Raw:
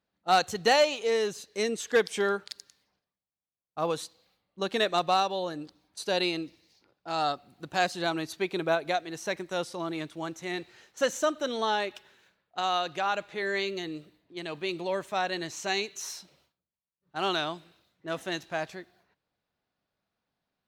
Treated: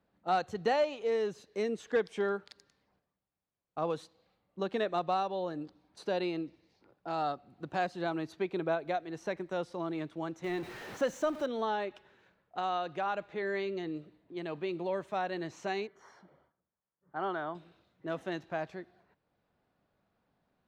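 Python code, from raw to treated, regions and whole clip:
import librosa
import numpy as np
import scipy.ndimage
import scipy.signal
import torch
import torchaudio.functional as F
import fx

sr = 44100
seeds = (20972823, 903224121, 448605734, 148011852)

y = fx.chain(x, sr, fx.zero_step(step_db=-35.5),
    fx.high_shelf(hz=11000.0, db=8.5), at=(10.44, 11.46))
y = fx.chain(y, sr, fx.savgol(points=41),
    fx.tilt_eq(slope=2.0), at=(15.87, 17.55))
y = fx.lowpass(y, sr, hz=1100.0, slope=6)
y = fx.band_squash(y, sr, depth_pct=40)
y = F.gain(torch.from_numpy(y), -2.5).numpy()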